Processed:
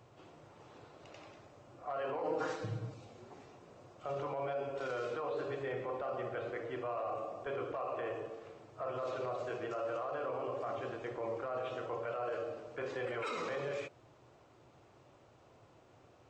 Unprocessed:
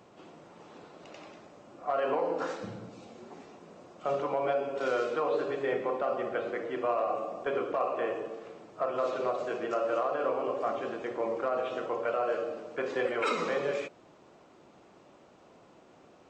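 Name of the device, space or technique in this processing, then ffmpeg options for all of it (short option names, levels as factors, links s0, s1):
car stereo with a boomy subwoofer: -filter_complex "[0:a]lowshelf=f=150:t=q:w=3:g=6.5,alimiter=level_in=1.19:limit=0.0631:level=0:latency=1:release=13,volume=0.841,asettb=1/sr,asplit=3[s0][s1][s2];[s0]atrim=end=2.234[s3];[s1]atrim=start=2.23:end=2.94,asetpts=PTS-STARTPTS,afade=t=in:d=0.004:c=qsin,afade=t=out:st=0.706:d=0.004:c=qsin,aecho=1:1:6.4:0.99,atrim=end_sample=31311[s4];[s2]atrim=start=2.936[s5];[s3][s4]acrossfade=d=0.004:c1=hsin:c2=qsin[s6];[s6][s5]acrossfade=d=0.004:c1=qsin:c2=hsin,volume=0.562"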